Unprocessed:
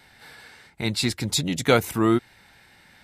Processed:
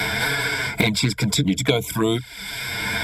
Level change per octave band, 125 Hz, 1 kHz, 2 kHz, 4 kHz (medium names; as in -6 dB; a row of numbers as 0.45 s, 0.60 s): +5.5 dB, +1.0 dB, +9.5 dB, +5.5 dB